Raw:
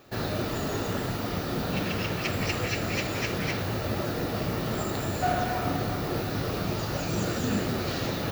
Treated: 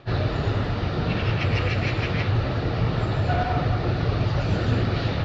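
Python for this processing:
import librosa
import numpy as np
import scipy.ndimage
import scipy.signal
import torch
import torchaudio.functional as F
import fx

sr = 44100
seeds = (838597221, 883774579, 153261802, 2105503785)

y = fx.stretch_vocoder_free(x, sr, factor=0.63)
y = scipy.signal.sosfilt(scipy.signal.butter(4, 4300.0, 'lowpass', fs=sr, output='sos'), y)
y = fx.low_shelf_res(y, sr, hz=150.0, db=6.5, q=1.5)
y = y * 10.0 ** (6.5 / 20.0)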